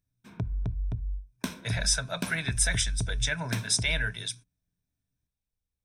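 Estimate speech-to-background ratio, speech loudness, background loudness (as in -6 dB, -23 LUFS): 7.5 dB, -28.5 LUFS, -36.0 LUFS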